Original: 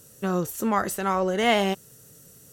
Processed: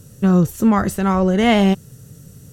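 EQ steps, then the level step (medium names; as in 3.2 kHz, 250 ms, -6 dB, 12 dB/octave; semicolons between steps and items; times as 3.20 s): tone controls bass +15 dB, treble +1 dB; treble shelf 8.3 kHz -7 dB; +3.5 dB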